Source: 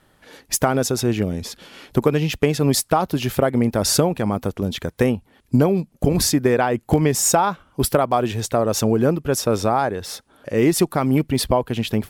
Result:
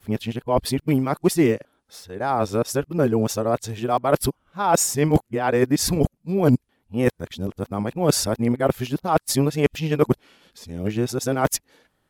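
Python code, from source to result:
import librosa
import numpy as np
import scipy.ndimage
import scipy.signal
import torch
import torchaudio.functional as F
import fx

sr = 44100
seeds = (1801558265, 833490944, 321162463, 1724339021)

y = x[::-1].copy()
y = fx.upward_expand(y, sr, threshold_db=-36.0, expansion=1.5)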